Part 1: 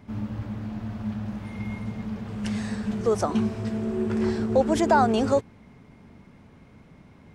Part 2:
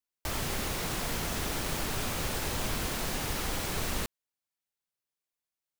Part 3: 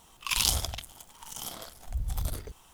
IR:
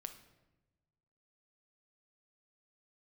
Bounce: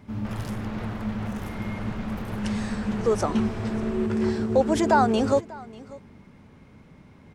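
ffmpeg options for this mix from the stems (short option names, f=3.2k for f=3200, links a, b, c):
-filter_complex "[0:a]bandreject=f=690:w=18,volume=0.5dB,asplit=2[a][b];[b]volume=-21dB[c];[1:a]lowpass=1.8k,alimiter=level_in=7dB:limit=-24dB:level=0:latency=1:release=101,volume=-7dB,volume=3dB[d];[2:a]volume=-15dB,afade=t=in:st=0.73:d=0.21:silence=0.398107[e];[c]aecho=0:1:592:1[f];[a][d][e][f]amix=inputs=4:normalize=0"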